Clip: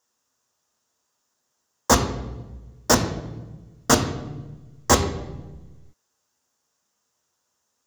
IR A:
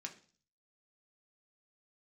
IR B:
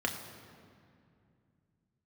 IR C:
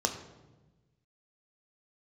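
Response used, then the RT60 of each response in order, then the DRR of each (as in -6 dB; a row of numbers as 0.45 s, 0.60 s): C; 0.40 s, 2.4 s, 1.2 s; 2.0 dB, 2.0 dB, 4.0 dB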